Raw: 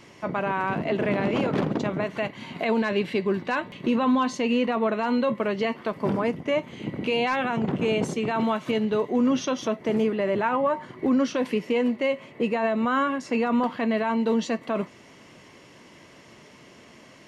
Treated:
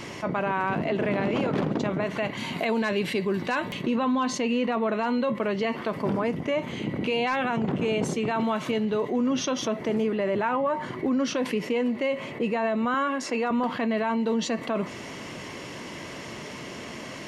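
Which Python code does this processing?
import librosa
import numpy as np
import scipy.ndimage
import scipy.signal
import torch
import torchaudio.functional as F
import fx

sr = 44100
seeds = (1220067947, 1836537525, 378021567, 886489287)

y = fx.high_shelf(x, sr, hz=6700.0, db=11.0, at=(2.37, 3.82))
y = fx.highpass(y, sr, hz=280.0, slope=12, at=(12.94, 13.51))
y = fx.env_flatten(y, sr, amount_pct=50)
y = y * librosa.db_to_amplitude(-4.0)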